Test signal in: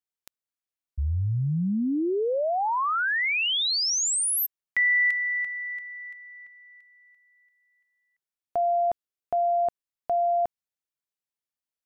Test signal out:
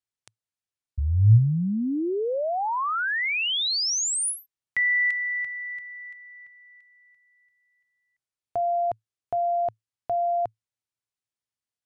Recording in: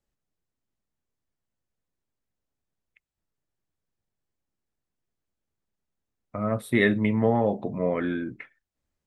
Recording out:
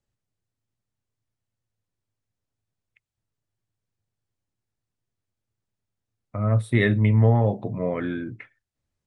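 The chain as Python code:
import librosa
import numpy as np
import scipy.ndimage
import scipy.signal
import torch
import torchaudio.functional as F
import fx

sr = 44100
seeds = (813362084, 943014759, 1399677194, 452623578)

y = scipy.signal.sosfilt(scipy.signal.ellip(4, 1.0, 40, 10000.0, 'lowpass', fs=sr, output='sos'), x)
y = fx.peak_eq(y, sr, hz=110.0, db=14.5, octaves=0.43)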